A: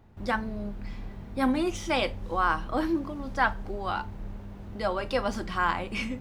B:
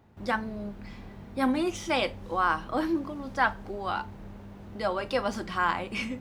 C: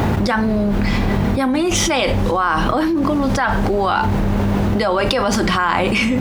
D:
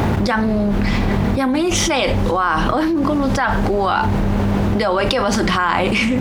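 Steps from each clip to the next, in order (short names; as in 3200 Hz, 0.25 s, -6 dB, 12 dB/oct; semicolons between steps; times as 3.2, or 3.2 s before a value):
HPF 110 Hz 6 dB/oct
fast leveller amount 100%; gain +4 dB
Doppler distortion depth 0.14 ms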